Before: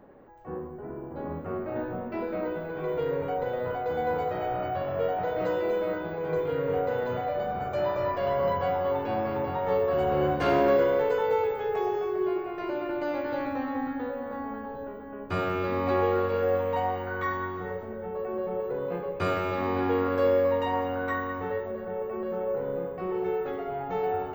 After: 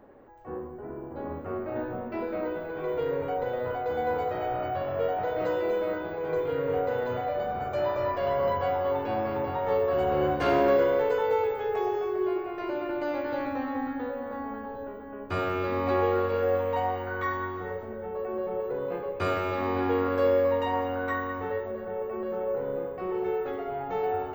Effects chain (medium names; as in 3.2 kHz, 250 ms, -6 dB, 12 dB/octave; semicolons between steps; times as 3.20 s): peaking EQ 170 Hz -9 dB 0.31 oct